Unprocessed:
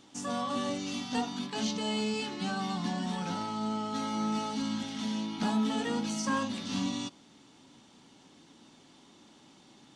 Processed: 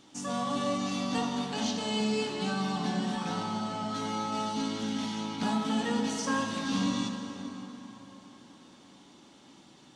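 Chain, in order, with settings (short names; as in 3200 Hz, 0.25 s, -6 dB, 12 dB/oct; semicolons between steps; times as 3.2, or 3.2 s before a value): plate-style reverb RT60 4.4 s, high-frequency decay 0.6×, DRR 2.5 dB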